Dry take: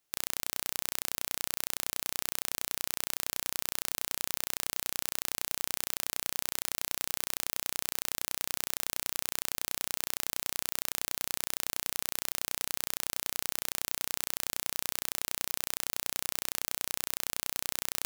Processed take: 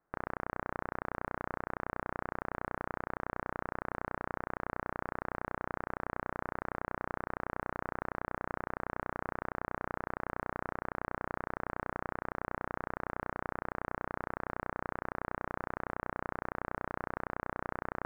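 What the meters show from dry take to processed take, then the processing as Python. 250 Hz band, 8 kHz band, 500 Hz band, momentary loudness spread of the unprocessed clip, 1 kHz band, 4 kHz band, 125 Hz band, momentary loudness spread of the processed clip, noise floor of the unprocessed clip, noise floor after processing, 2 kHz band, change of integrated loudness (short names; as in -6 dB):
+7.5 dB, under -40 dB, +7.5 dB, 0 LU, +7.5 dB, under -30 dB, +7.5 dB, 0 LU, -79 dBFS, -83 dBFS, +0.5 dB, -7.0 dB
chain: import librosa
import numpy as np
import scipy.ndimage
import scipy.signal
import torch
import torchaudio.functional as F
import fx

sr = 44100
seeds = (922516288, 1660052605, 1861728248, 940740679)

y = scipy.signal.sosfilt(scipy.signal.butter(6, 1600.0, 'lowpass', fs=sr, output='sos'), x)
y = y * 10.0 ** (7.5 / 20.0)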